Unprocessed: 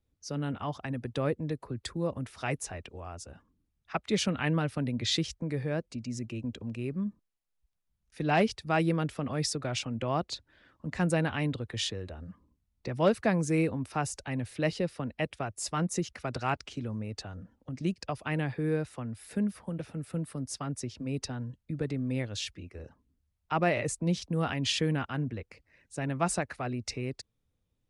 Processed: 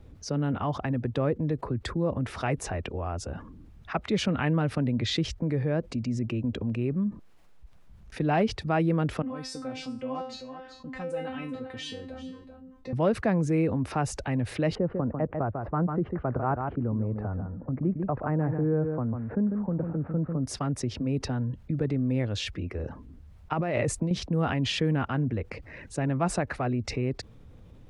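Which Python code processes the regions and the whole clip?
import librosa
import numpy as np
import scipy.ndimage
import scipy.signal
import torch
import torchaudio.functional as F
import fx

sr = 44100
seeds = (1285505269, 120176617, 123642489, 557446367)

y = fx.chain(x, sr, fx.comb_fb(f0_hz=260.0, decay_s=0.31, harmonics='all', damping=0.0, mix_pct=100),
    fx.echo_single(ms=387, db=-17.0), at=(9.22, 12.93))
y = fx.chain(y, sr, fx.lowpass(hz=1400.0, slope=24),
    fx.echo_single(ms=147, db=-9.5), at=(14.75, 20.45))
y = fx.chain(y, sr, fx.high_shelf(hz=10000.0, db=9.5),
    fx.over_compress(threshold_db=-32.0, ratio=-1.0), at=(23.53, 24.11))
y = fx.lowpass(y, sr, hz=1200.0, slope=6)
y = fx.env_flatten(y, sr, amount_pct=50)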